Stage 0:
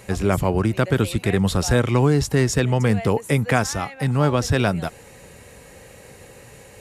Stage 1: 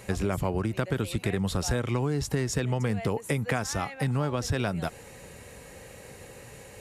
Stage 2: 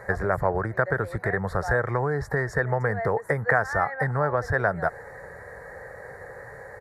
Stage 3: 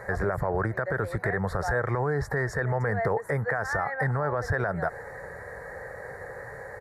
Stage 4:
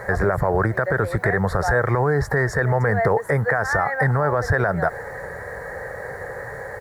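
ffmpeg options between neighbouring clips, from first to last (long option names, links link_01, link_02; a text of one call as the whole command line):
ffmpeg -i in.wav -af "acompressor=threshold=-22dB:ratio=6,volume=-2dB" out.wav
ffmpeg -i in.wav -af "firequalizer=gain_entry='entry(140,0);entry(250,-9);entry(450,6);entry(650,9);entry(1100,7);entry(1800,14);entry(2700,-29);entry(4300,-11);entry(6600,-15);entry(13000,-11)':delay=0.05:min_phase=1" out.wav
ffmpeg -i in.wav -af "alimiter=limit=-18.5dB:level=0:latency=1:release=36,volume=1.5dB" out.wav
ffmpeg -i in.wav -af "acrusher=bits=10:mix=0:aa=0.000001,volume=7.5dB" out.wav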